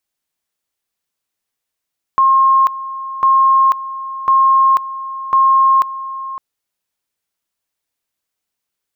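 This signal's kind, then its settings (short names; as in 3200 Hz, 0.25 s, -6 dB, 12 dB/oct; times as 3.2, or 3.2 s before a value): two-level tone 1070 Hz -7.5 dBFS, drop 15 dB, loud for 0.49 s, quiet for 0.56 s, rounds 4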